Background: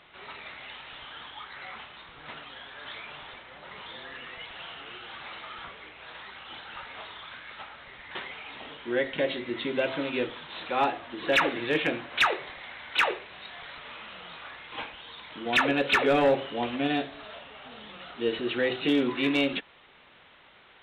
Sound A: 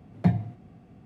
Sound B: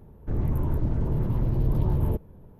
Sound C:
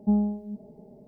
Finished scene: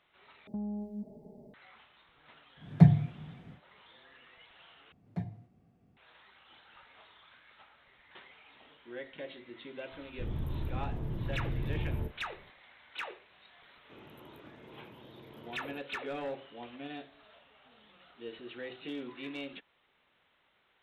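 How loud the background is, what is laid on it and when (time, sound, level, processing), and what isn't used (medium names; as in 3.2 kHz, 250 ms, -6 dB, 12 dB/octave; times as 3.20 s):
background -16 dB
0.47 s: replace with C -3 dB + compression 10:1, threshold -31 dBFS
2.56 s: add A -1.5 dB, fades 0.10 s + peaking EQ 150 Hz +14.5 dB 0.2 oct
4.92 s: replace with A -15 dB
9.91 s: add B -11 dB + doubling 39 ms -12 dB
13.62 s: add B -15 dB + high-pass 350 Hz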